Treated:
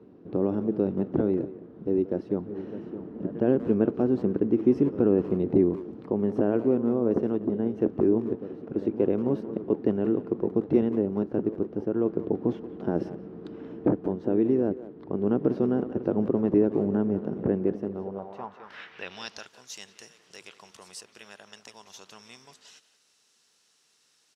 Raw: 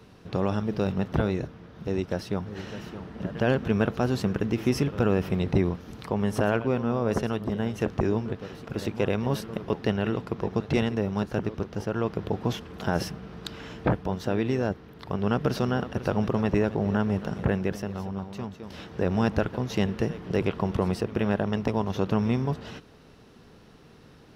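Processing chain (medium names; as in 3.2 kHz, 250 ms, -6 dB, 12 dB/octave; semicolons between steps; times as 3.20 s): band-pass sweep 320 Hz -> 7.6 kHz, 17.93–19.53 s; speakerphone echo 180 ms, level -14 dB; trim +7.5 dB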